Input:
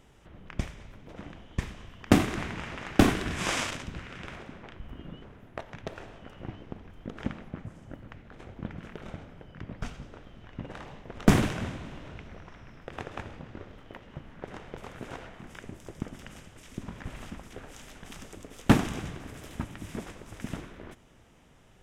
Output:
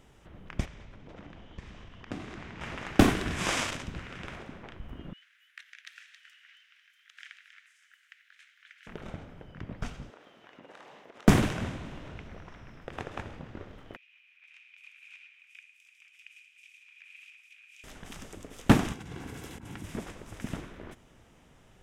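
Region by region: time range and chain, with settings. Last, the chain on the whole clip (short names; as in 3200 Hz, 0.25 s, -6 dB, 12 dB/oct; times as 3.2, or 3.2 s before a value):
0.65–2.61 LPF 6100 Hz + compressor 2.5:1, threshold -44 dBFS
5.13–8.87 steep high-pass 1600 Hz 48 dB/oct + echo 0.272 s -9 dB
10.1–11.28 HPF 380 Hz + compressor 4:1, threshold -47 dBFS
13.96–17.84 ladder high-pass 2400 Hz, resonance 90% + upward compressor, threshold -57 dBFS
18.93–19.84 negative-ratio compressor -41 dBFS + notch comb 610 Hz
whole clip: dry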